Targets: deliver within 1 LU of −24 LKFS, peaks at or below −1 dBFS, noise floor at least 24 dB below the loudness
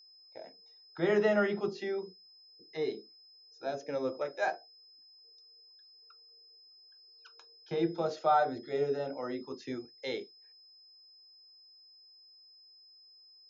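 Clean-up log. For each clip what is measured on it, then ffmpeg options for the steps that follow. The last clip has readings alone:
interfering tone 5,100 Hz; level of the tone −56 dBFS; integrated loudness −33.5 LKFS; sample peak −16.0 dBFS; target loudness −24.0 LKFS
→ -af "bandreject=frequency=5100:width=30"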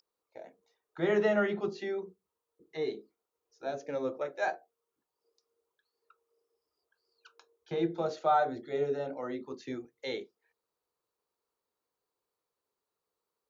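interfering tone none found; integrated loudness −33.0 LKFS; sample peak −16.0 dBFS; target loudness −24.0 LKFS
→ -af "volume=9dB"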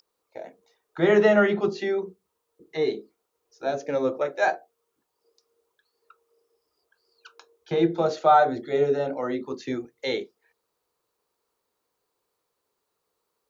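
integrated loudness −24.0 LKFS; sample peak −7.0 dBFS; background noise floor −80 dBFS

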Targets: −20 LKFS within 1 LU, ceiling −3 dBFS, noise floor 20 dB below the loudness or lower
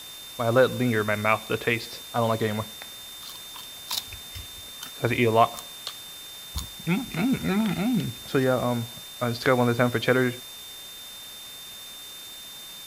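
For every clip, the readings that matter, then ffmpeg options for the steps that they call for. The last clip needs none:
interfering tone 3,600 Hz; level of the tone −41 dBFS; background noise floor −41 dBFS; target noise floor −46 dBFS; integrated loudness −25.5 LKFS; sample peak −6.0 dBFS; target loudness −20.0 LKFS
→ -af "bandreject=frequency=3600:width=30"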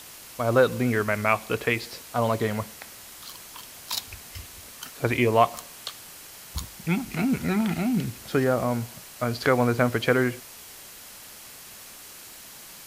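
interfering tone none found; background noise floor −45 dBFS; target noise floor −46 dBFS
→ -af "afftdn=noise_reduction=6:noise_floor=-45"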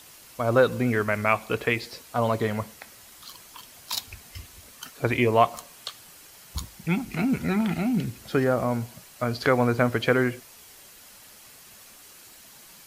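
background noise floor −50 dBFS; integrated loudness −25.0 LKFS; sample peak −6.0 dBFS; target loudness −20.0 LKFS
→ -af "volume=5dB,alimiter=limit=-3dB:level=0:latency=1"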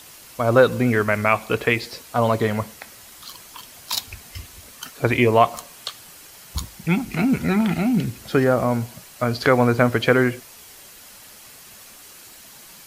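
integrated loudness −20.5 LKFS; sample peak −3.0 dBFS; background noise floor −45 dBFS

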